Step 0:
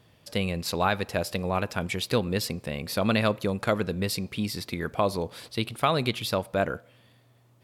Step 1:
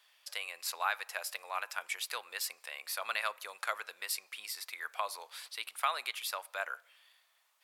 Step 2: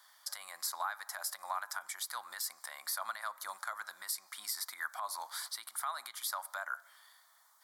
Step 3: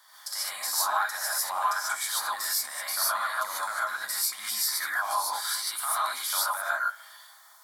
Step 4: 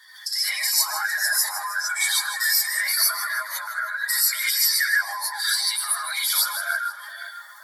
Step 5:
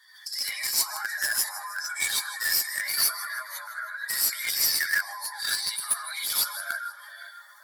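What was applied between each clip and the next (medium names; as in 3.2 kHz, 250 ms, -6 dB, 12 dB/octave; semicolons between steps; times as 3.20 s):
Bessel high-pass 1.4 kHz, order 4; dynamic bell 3.8 kHz, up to -8 dB, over -47 dBFS, Q 1
compression 6:1, threshold -40 dBFS, peak gain reduction 13.5 dB; peak limiter -32 dBFS, peak gain reduction 9 dB; static phaser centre 1.1 kHz, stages 4; trim +9.5 dB
in parallel at -7 dB: overload inside the chain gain 31.5 dB; on the sum: gated-style reverb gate 170 ms rising, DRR -7.5 dB
spectral contrast enhancement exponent 1.9; resonant high shelf 1.5 kHz +7.5 dB, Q 3; two-band feedback delay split 1.9 kHz, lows 517 ms, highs 158 ms, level -11.5 dB
feedback comb 580 Hz, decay 0.18 s, harmonics all, mix 60%; in parallel at -7 dB: bit crusher 4-bit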